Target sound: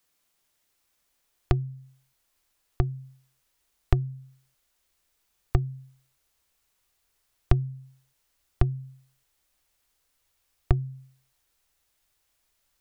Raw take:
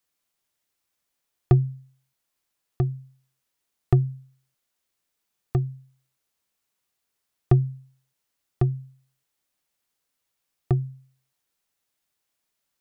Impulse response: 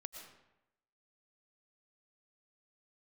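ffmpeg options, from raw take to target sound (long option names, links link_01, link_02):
-af "acompressor=threshold=-33dB:ratio=2.5,asubboost=boost=6.5:cutoff=66,volume=6dB"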